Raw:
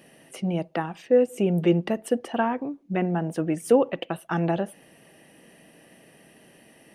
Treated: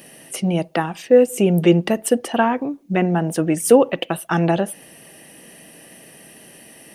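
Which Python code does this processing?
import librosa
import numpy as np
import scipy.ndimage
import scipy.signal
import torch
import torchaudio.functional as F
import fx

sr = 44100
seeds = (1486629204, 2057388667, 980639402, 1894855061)

y = fx.high_shelf(x, sr, hz=4500.0, db=11.0)
y = y * 10.0 ** (6.5 / 20.0)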